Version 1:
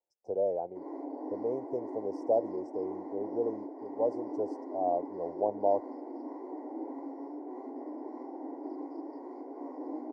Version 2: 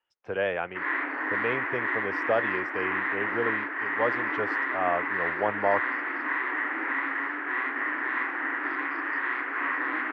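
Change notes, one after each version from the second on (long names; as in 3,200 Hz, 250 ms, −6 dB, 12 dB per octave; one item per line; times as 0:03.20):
speech: add bass and treble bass +11 dB, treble +1 dB
master: remove inverse Chebyshev band-stop filter 1,200–3,700 Hz, stop band 40 dB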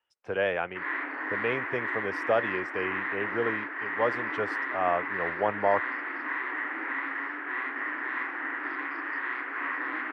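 background −4.0 dB
master: remove high-frequency loss of the air 75 metres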